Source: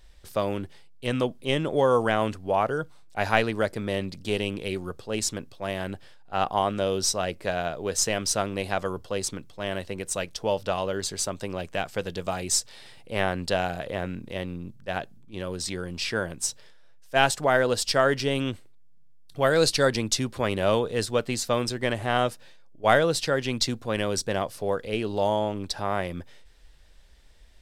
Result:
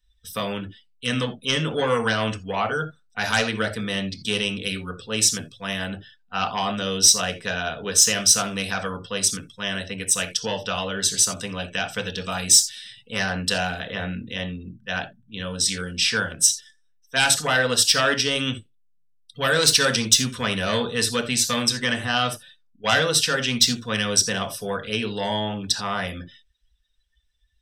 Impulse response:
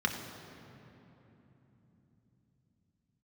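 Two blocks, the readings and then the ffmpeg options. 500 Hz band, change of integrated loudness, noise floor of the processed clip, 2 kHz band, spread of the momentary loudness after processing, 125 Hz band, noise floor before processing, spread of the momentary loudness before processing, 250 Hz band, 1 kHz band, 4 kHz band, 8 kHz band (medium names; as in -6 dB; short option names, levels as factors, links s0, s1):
-2.5 dB, +5.0 dB, -61 dBFS, +6.0 dB, 14 LU, +1.5 dB, -48 dBFS, 11 LU, +2.0 dB, 0.0 dB, +9.5 dB, +11.0 dB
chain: -filter_complex "[0:a]aeval=exprs='0.668*(cos(1*acos(clip(val(0)/0.668,-1,1)))-cos(1*PI/2))+0.299*(cos(5*acos(clip(val(0)/0.668,-1,1)))-cos(5*PI/2))':c=same[s0];[1:a]atrim=start_sample=2205,afade=t=out:st=0.4:d=0.01,atrim=end_sample=18081,atrim=end_sample=3969[s1];[s0][s1]afir=irnorm=-1:irlink=0,crystalizer=i=5.5:c=0,afftdn=nr=27:nf=-28,volume=0.15"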